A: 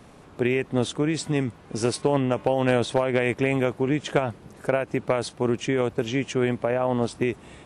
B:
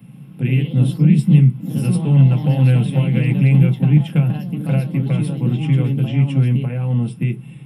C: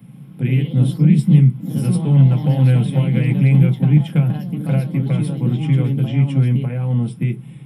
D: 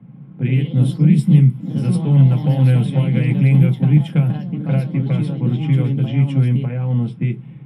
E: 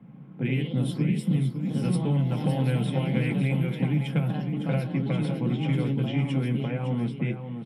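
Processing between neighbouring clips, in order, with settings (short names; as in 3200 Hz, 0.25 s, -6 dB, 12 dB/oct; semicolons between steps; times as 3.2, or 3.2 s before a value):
EQ curve 100 Hz 0 dB, 150 Hz +12 dB, 270 Hz -15 dB, 1200 Hz -22 dB, 1900 Hz -15 dB, 2700 Hz -1 dB, 6600 Hz -18 dB, 11000 Hz +9 dB; echoes that change speed 0.122 s, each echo +2 st, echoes 3, each echo -6 dB; reverb RT60 0.15 s, pre-delay 3 ms, DRR 2 dB; gain -1 dB
notch 2700 Hz, Q 9.9
low-pass opened by the level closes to 1400 Hz, open at -9.5 dBFS
bell 97 Hz -11.5 dB 1.6 oct; compressor, threshold -20 dBFS, peak gain reduction 8 dB; on a send: echo 0.557 s -8.5 dB; on the sum: gain -1 dB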